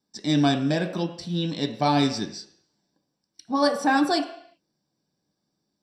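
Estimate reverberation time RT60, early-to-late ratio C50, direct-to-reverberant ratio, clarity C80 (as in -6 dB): not exponential, 9.0 dB, 2.5 dB, 11.5 dB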